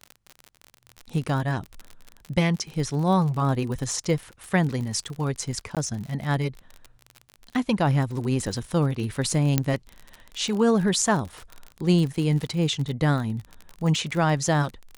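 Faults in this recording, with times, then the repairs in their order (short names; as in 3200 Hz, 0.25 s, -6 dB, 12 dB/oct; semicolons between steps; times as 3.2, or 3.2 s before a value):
crackle 43/s -30 dBFS
5.75–5.77 gap 17 ms
9.58 pop -6 dBFS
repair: de-click; interpolate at 5.75, 17 ms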